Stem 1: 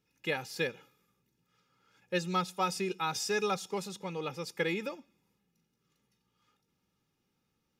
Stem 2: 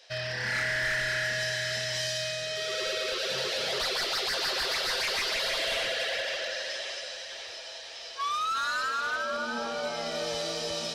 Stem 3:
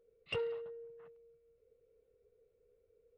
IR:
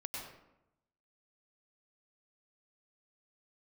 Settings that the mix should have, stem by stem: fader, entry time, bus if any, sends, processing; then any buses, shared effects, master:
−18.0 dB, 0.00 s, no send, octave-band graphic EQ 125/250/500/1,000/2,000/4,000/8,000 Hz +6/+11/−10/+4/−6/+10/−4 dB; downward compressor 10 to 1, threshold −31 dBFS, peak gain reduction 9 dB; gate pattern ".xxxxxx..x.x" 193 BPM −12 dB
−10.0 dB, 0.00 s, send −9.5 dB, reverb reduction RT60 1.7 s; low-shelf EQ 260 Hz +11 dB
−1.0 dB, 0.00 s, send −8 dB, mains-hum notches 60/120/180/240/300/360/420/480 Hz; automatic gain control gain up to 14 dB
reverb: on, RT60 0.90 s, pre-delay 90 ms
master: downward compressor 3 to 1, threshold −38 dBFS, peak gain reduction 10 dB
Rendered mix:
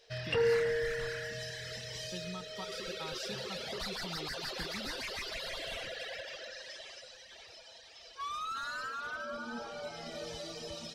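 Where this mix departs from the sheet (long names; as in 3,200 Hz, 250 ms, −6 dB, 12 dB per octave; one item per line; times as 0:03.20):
stem 1 −18.0 dB → −9.0 dB
master: missing downward compressor 3 to 1, threshold −38 dBFS, peak gain reduction 10 dB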